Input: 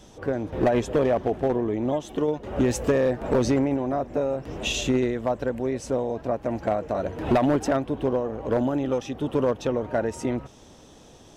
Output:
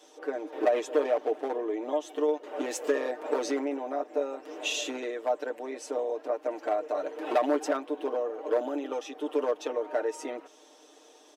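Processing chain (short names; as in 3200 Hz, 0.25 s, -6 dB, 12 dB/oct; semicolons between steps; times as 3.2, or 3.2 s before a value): inverse Chebyshev high-pass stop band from 160 Hz, stop band 40 dB; comb 6.6 ms, depth 76%; gain -5.5 dB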